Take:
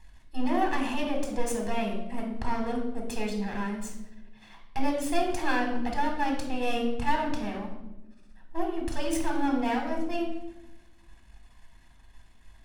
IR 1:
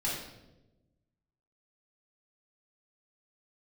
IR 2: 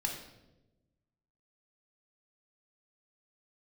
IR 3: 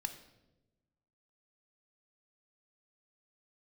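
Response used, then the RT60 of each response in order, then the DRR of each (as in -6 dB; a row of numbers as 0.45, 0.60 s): 2; 1.0, 1.0, 1.0 s; -6.5, 1.0, 8.0 dB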